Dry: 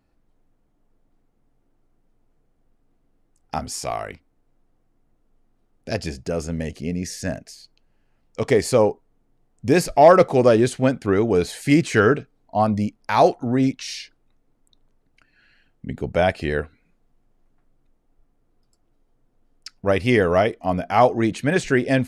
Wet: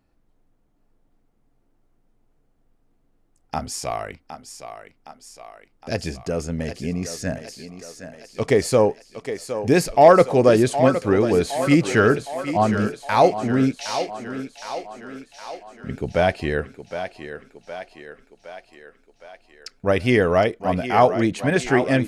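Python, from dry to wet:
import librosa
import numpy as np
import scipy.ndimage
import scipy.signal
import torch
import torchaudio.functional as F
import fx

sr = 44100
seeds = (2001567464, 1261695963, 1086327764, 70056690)

y = fx.echo_thinned(x, sr, ms=764, feedback_pct=61, hz=250.0, wet_db=-9.5)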